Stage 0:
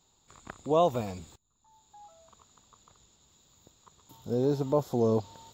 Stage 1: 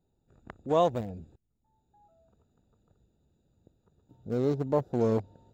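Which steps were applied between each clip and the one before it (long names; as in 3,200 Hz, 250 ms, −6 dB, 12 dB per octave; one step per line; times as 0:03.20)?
adaptive Wiener filter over 41 samples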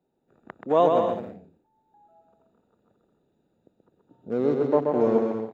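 three-way crossover with the lows and the highs turned down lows −21 dB, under 180 Hz, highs −14 dB, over 3,100 Hz
on a send: bouncing-ball delay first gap 130 ms, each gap 0.65×, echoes 5
on the sum: level +4.5 dB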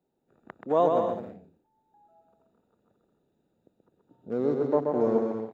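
dynamic equaliser 2,700 Hz, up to −7 dB, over −48 dBFS, Q 1.5
level −3 dB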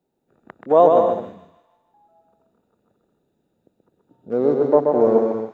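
dynamic equaliser 610 Hz, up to +7 dB, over −37 dBFS, Q 0.71
delay with a high-pass on its return 154 ms, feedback 47%, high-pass 2,100 Hz, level −8 dB
level +3.5 dB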